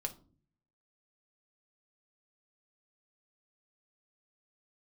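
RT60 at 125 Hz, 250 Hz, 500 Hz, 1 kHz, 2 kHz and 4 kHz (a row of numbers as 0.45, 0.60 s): 0.90, 0.75, 0.50, 0.35, 0.25, 0.25 s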